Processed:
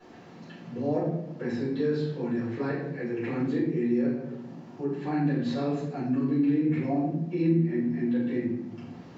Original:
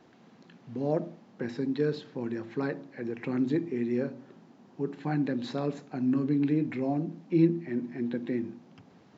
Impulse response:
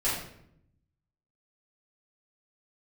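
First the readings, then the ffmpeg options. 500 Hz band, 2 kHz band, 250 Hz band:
+2.0 dB, +2.0 dB, +2.5 dB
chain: -filter_complex "[1:a]atrim=start_sample=2205[a];[0:a][a]afir=irnorm=-1:irlink=0,acompressor=threshold=-39dB:ratio=1.5"

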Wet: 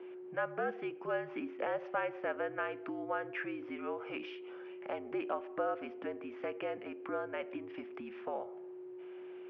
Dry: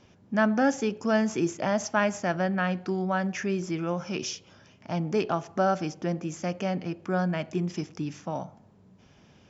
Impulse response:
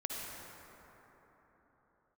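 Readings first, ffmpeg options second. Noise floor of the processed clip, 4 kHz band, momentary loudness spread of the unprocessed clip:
-48 dBFS, -14.5 dB, 9 LU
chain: -af "acompressor=threshold=-38dB:ratio=2.5,aeval=exprs='val(0)+0.00562*sin(2*PI*430*n/s)':c=same,highpass=f=400:t=q:w=0.5412,highpass=f=400:t=q:w=1.307,lowpass=f=2.9k:t=q:w=0.5176,lowpass=f=2.9k:t=q:w=0.7071,lowpass=f=2.9k:t=q:w=1.932,afreqshift=-65,volume=2dB"

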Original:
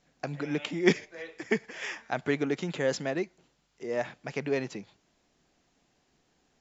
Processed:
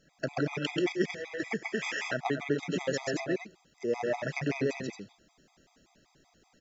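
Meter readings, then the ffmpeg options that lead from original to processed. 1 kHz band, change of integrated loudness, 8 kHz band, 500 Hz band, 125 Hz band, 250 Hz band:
+1.0 dB, -1.5 dB, n/a, -1.5 dB, 0.0 dB, -1.0 dB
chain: -af "aecho=1:1:134.1|224.5:0.794|0.447,acompressor=threshold=-29dB:ratio=6,afftfilt=real='re*gt(sin(2*PI*5.2*pts/sr)*(1-2*mod(floor(b*sr/1024/650),2)),0)':imag='im*gt(sin(2*PI*5.2*pts/sr)*(1-2*mod(floor(b*sr/1024/650),2)),0)':win_size=1024:overlap=0.75,volume=5.5dB"

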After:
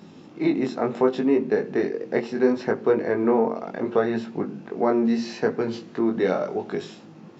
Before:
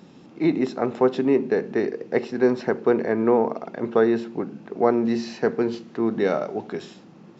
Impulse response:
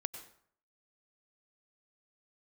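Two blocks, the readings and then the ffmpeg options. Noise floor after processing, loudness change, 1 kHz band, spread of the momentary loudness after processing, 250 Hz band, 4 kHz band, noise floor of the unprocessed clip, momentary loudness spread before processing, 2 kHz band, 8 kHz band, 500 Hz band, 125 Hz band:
-46 dBFS, -1.0 dB, -1.0 dB, 8 LU, -0.5 dB, +0.5 dB, -48 dBFS, 10 LU, -0.5 dB, n/a, -1.0 dB, -1.0 dB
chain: -filter_complex "[0:a]flanger=delay=18.5:depth=3.6:speed=0.71,asplit=2[a][b];[b]acompressor=threshold=-29dB:ratio=6,volume=-2dB[c];[a][c]amix=inputs=2:normalize=0"

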